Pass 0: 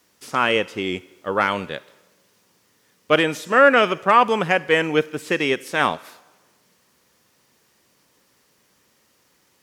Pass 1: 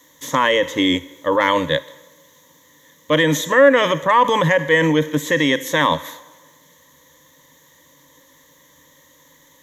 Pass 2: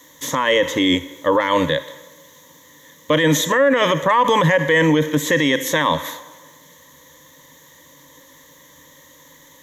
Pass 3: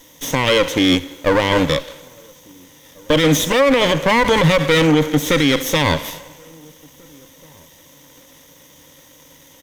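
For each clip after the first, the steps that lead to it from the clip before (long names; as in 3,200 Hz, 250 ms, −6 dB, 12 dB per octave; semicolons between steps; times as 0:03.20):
EQ curve with evenly spaced ripples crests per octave 1.1, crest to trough 16 dB; in parallel at +1 dB: compressor whose output falls as the input rises −22 dBFS, ratio −1; on the sum: level −3.5 dB
boost into a limiter +10.5 dB; level −6 dB
lower of the sound and its delayed copy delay 0.34 ms; slap from a distant wall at 290 metres, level −29 dB; level +2.5 dB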